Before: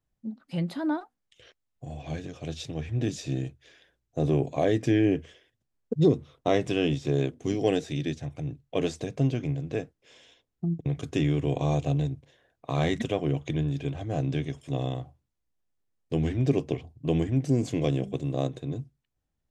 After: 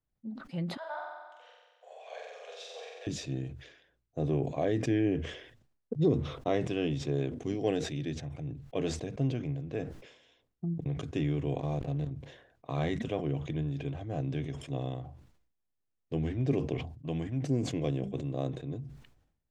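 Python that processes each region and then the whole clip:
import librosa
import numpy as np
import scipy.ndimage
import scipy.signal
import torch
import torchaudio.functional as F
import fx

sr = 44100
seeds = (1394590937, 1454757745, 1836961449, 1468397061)

y = fx.chain(x, sr, fx.steep_highpass(hz=460.0, slope=72),
    fx.room_flutter(wall_m=7.9, rt60_s=1.4), at=(0.77, 3.07))
y = fx.chain(y, sr, fx.level_steps(step_db=13),
    fx.backlash(play_db=-42.5), at=(11.6, 12.11))
y = fx.chain(y, sr, fx.highpass(hz=110.0, slope=6),
    fx.peak_eq(hz=390.0, db=-6.5, octaves=0.9), at=(16.78, 17.44))
y = fx.lowpass(y, sr, hz=3200.0, slope=6)
y = fx.sustainer(y, sr, db_per_s=76.0)
y = y * librosa.db_to_amplitude(-5.5)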